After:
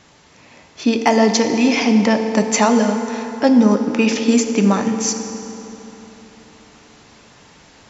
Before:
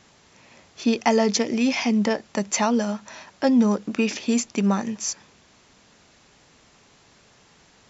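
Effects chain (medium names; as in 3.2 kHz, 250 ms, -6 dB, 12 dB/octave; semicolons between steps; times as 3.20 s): treble shelf 5.8 kHz -3.5 dB; in parallel at +1 dB: gain riding within 3 dB 0.5 s; on the sum: hard clipper -2.5 dBFS, distortion -46 dB; FDN reverb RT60 3.6 s, high-frequency decay 0.6×, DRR 5.5 dB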